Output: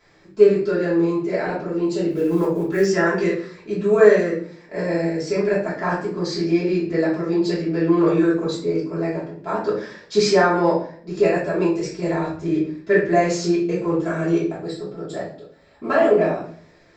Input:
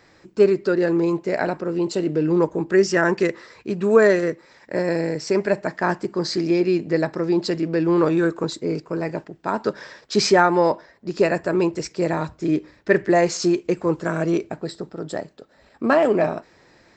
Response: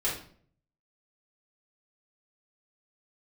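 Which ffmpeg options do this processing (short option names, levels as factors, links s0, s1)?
-filter_complex "[0:a]asettb=1/sr,asplit=3[s0][s1][s2];[s0]atrim=end=2.104[s3];[s1]atrim=start=2.1:end=2.85,asetpts=PTS-STARTPTS,afade=t=in:d=0.004:c=qsin,afade=t=out:st=0.746:d=0.004:c=qsin,acrusher=bits=8:mode=log:mix=0:aa=0.000001[s4];[s2]atrim=start=2.846[s5];[s3][s4]acrossfade=d=0.004:c1=hsin:c2=qsin[s6];[s6][s5]acrossfade=d=0.004:c1=qsin:c2=hsin[s7];[1:a]atrim=start_sample=2205[s8];[s7][s8]afir=irnorm=-1:irlink=0,volume=0.398"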